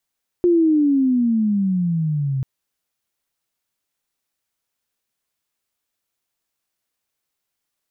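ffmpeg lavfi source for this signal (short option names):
-f lavfi -i "aevalsrc='pow(10,(-11.5-7.5*t/1.99)/20)*sin(2*PI*357*1.99/(-17.5*log(2)/12)*(exp(-17.5*log(2)/12*t/1.99)-1))':d=1.99:s=44100"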